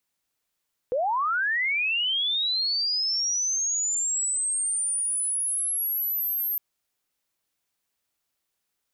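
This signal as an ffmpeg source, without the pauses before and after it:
-f lavfi -i "aevalsrc='pow(10,(-22-2.5*t/5.66)/20)*sin(2*PI*(470*t+12530*t*t/(2*5.66)))':d=5.66:s=44100"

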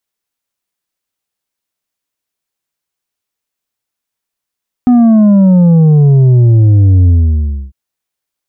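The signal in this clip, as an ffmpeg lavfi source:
-f lavfi -i "aevalsrc='0.631*clip((2.85-t)/0.64,0,1)*tanh(1.88*sin(2*PI*250*2.85/log(65/250)*(exp(log(65/250)*t/2.85)-1)))/tanh(1.88)':d=2.85:s=44100"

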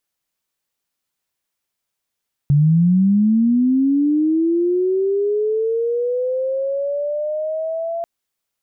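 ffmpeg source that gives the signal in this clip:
-f lavfi -i "aevalsrc='pow(10,(-10-11*t/5.54)/20)*sin(2*PI*(140*t+540*t*t/(2*5.54)))':d=5.54:s=44100"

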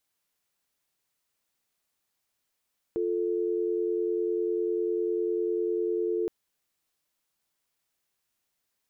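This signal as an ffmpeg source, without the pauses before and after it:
-f lavfi -i "aevalsrc='0.0398*(sin(2*PI*350*t)+sin(2*PI*440*t))':d=3.32:s=44100"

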